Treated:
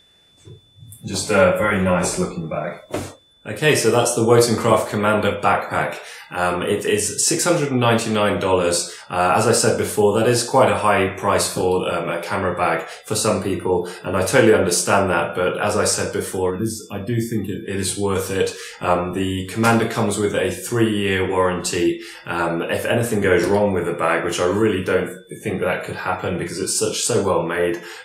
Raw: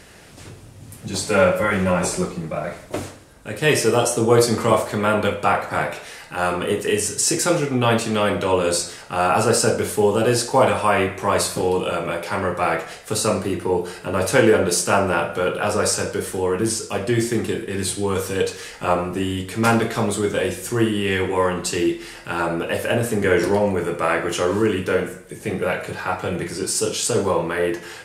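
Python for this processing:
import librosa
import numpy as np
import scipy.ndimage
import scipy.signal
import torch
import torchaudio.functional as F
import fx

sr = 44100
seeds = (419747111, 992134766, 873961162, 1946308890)

y = fx.spec_box(x, sr, start_s=16.5, length_s=1.15, low_hz=340.0, high_hz=11000.0, gain_db=-8)
y = y + 10.0 ** (-38.0 / 20.0) * np.sin(2.0 * np.pi * 3500.0 * np.arange(len(y)) / sr)
y = fx.noise_reduce_blind(y, sr, reduce_db=17)
y = y * 10.0 ** (1.5 / 20.0)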